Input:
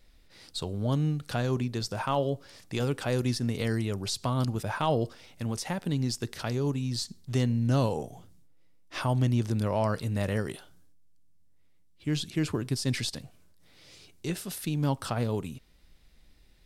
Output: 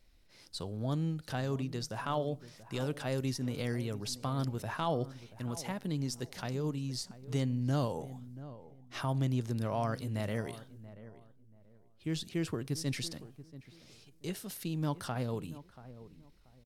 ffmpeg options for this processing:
-filter_complex "[0:a]asetrate=46722,aresample=44100,atempo=0.943874,asplit=2[a][b];[b]adelay=683,lowpass=f=1.2k:p=1,volume=-15dB,asplit=2[c][d];[d]adelay=683,lowpass=f=1.2k:p=1,volume=0.26,asplit=2[e][f];[f]adelay=683,lowpass=f=1.2k:p=1,volume=0.26[g];[c][e][g]amix=inputs=3:normalize=0[h];[a][h]amix=inputs=2:normalize=0,volume=-6dB"

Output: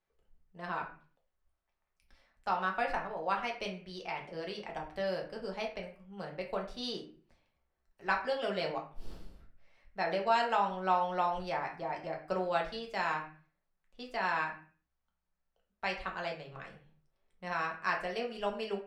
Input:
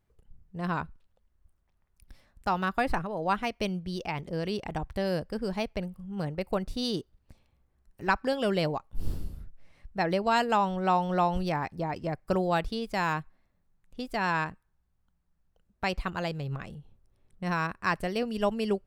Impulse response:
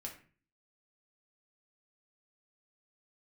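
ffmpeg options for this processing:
-filter_complex "[0:a]acrossover=split=420 6600:gain=0.178 1 0.2[a][b][c];[a][b][c]amix=inputs=3:normalize=0[d];[1:a]atrim=start_sample=2205,afade=t=out:st=0.43:d=0.01,atrim=end_sample=19404[e];[d][e]afir=irnorm=-1:irlink=0"

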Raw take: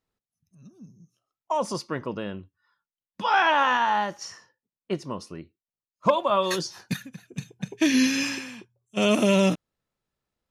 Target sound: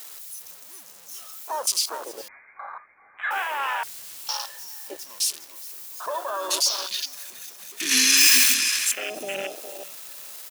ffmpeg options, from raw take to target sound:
-filter_complex "[0:a]aeval=exprs='val(0)+0.5*0.0668*sgn(val(0))':c=same,highpass=550,alimiter=limit=-16.5dB:level=0:latency=1:release=22,asettb=1/sr,asplit=3[a][b][c];[a]atrim=end=7.914[d];[b]atrim=start=7.91:end=8.54,asetpts=PTS-STARTPTS,afade=t=in:d=0.004:c=qsin,afade=t=out:st=0.626:d=0.004:c=qsin,acontrast=55[e];[c]atrim=start=8.536[f];[d][e]acrossfade=d=0.004:c1=hsin:c2=qsin[g];[g][f]acrossfade=d=0.004:c1=qsin:c2=hsin,aecho=1:1:412|824|1236|1648|2060:0.473|0.194|0.0795|0.0326|0.0134,asettb=1/sr,asplit=3[h][i][j];[h]atrim=end=3.834[k];[i]atrim=start=3.83:end=4.29,asetpts=PTS-STARTPTS,afade=t=in:d=0.004:c=qsin,afade=t=out:st=0.456:d=0.004:c=qsin,aeval=exprs='(mod(23.7*val(0)+1,2)-1)/23.7':c=same[l];[j]atrim=start=4.286[m];[k][l]acrossfade=d=0.004:c1=hsin:c2=qsin[n];[n][m]acrossfade=d=0.004:c1=qsin:c2=hsin,acontrast=23,asettb=1/sr,asplit=3[o][p][q];[o]atrim=end=2.284[r];[p]atrim=start=2.28:end=3.31,asetpts=PTS-STARTPTS,afade=t=in:d=0.004:c=qsin,afade=t=out:st=1.026:d=0.004:c=qsin,lowpass=f=2.2k:t=q:w=0.5098,lowpass=f=2.2k:t=q:w=0.6013,lowpass=f=2.2k:t=q:w=0.9,lowpass=f=2.2k:t=q:w=2.563,afreqshift=-2600[s];[q]atrim=start=3.306[t];[r][s]acrossfade=d=0.004:c1=hsin:c2=qsin[u];[u][t]acrossfade=d=0.004:c1=qsin:c2=hsin,crystalizer=i=4.5:c=0,afwtdn=0.158,volume=-10dB"

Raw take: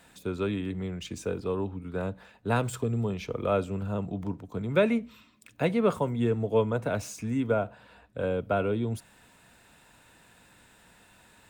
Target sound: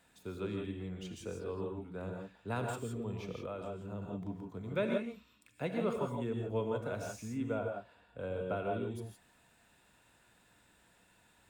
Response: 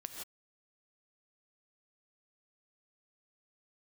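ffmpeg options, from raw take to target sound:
-filter_complex "[1:a]atrim=start_sample=2205[a];[0:a][a]afir=irnorm=-1:irlink=0,asettb=1/sr,asplit=3[b][c][d];[b]atrim=end=3.394[e];[c]atrim=start=3.39:end=4.02,asetpts=PTS-STARTPTS,afade=t=in:d=0.004:c=qsin,afade=t=out:st=0.626:d=0.004:c=qsin,acompressor=threshold=-32dB:ratio=4[f];[d]atrim=start=4.016[g];[e][f]acrossfade=d=0.004:c1=hsin:c2=qsin[h];[h][g]acrossfade=d=0.004:c1=qsin:c2=hsin,volume=-6.5dB"

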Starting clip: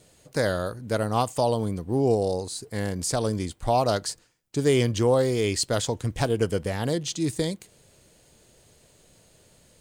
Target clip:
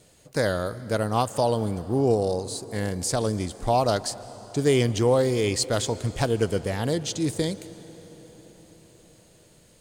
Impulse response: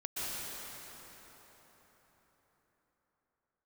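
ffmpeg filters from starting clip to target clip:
-filter_complex "[0:a]asplit=2[a][b];[1:a]atrim=start_sample=2205,asetrate=37485,aresample=44100[c];[b][c]afir=irnorm=-1:irlink=0,volume=-21dB[d];[a][d]amix=inputs=2:normalize=0"

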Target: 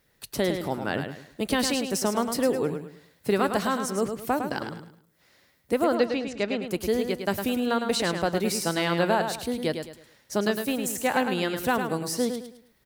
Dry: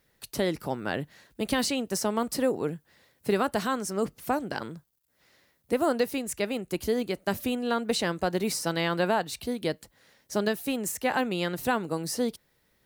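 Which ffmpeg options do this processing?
-filter_complex "[0:a]asettb=1/sr,asplit=3[a][b][c];[a]atrim=end=5.844[d];[b]atrim=start=5.84:end=6.62,asetpts=PTS-STARTPTS,afade=t=in:d=0.004:c=qsin,afade=t=out:st=0.776:d=0.004:c=qsin,lowpass=f=5.4k:w=0.5412,lowpass=f=5.4k:w=1.3066[e];[c]atrim=start=6.616[f];[d][e]acrossfade=d=0.004:c1=hsin:c2=qsin[g];[g][f]acrossfade=d=0.004:c1=qsin:c2=hsin,aecho=1:1:106|212|318|424:0.447|0.143|0.0457|0.0146,volume=1.5dB"

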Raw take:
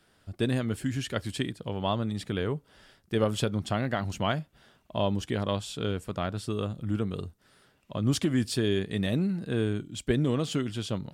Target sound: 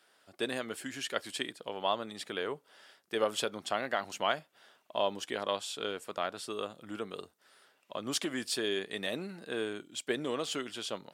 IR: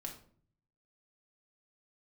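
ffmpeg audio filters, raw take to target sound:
-af "highpass=490"

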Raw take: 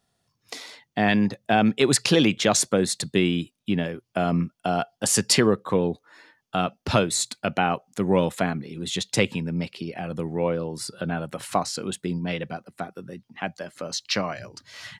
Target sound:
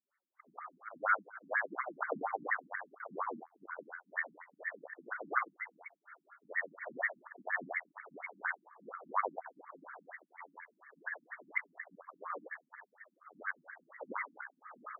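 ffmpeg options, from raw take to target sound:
-af "afftfilt=real='re':imag='-im':win_size=8192:overlap=0.75,lowpass=f=2.7k:t=q:w=0.5098,lowpass=f=2.7k:t=q:w=0.6013,lowpass=f=2.7k:t=q:w=0.9,lowpass=f=2.7k:t=q:w=2.563,afreqshift=-3200,afftfilt=real='re*between(b*sr/1024,210*pow(1600/210,0.5+0.5*sin(2*PI*4.2*pts/sr))/1.41,210*pow(1600/210,0.5+0.5*sin(2*PI*4.2*pts/sr))*1.41)':imag='im*between(b*sr/1024,210*pow(1600/210,0.5+0.5*sin(2*PI*4.2*pts/sr))/1.41,210*pow(1600/210,0.5+0.5*sin(2*PI*4.2*pts/sr))*1.41)':win_size=1024:overlap=0.75,volume=5.5dB"

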